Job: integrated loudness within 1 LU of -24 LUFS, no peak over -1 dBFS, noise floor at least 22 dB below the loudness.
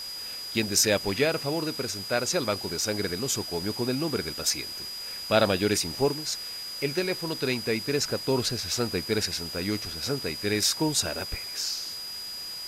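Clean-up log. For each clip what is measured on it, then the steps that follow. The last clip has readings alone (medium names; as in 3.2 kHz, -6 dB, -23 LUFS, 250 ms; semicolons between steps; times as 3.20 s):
steady tone 4.9 kHz; tone level -35 dBFS; noise floor -37 dBFS; noise floor target -50 dBFS; loudness -27.5 LUFS; peak level -6.5 dBFS; loudness target -24.0 LUFS
-> band-stop 4.9 kHz, Q 30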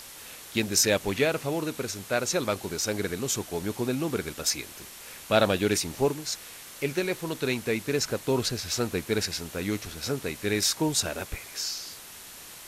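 steady tone not found; noise floor -45 dBFS; noise floor target -50 dBFS
-> noise reduction 6 dB, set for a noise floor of -45 dBFS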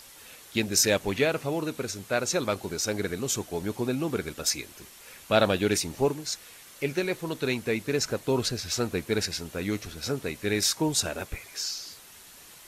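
noise floor -50 dBFS; loudness -28.0 LUFS; peak level -6.5 dBFS; loudness target -24.0 LUFS
-> trim +4 dB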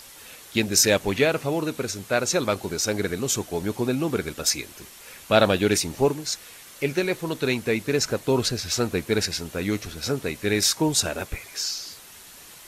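loudness -24.0 LUFS; peak level -2.5 dBFS; noise floor -46 dBFS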